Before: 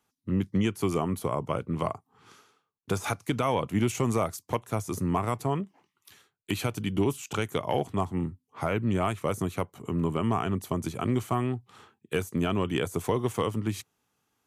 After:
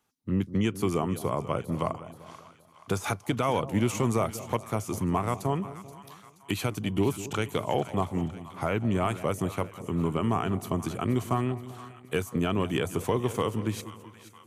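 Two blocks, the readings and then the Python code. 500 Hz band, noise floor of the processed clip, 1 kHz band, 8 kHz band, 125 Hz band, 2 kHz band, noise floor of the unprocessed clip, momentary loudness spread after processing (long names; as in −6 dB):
0.0 dB, −56 dBFS, 0.0 dB, 0.0 dB, +0.5 dB, 0.0 dB, −80 dBFS, 12 LU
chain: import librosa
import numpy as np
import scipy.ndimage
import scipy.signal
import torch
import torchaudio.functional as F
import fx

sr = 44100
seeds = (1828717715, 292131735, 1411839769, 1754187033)

y = fx.echo_split(x, sr, split_hz=880.0, low_ms=195, high_ms=477, feedback_pct=52, wet_db=-14.0)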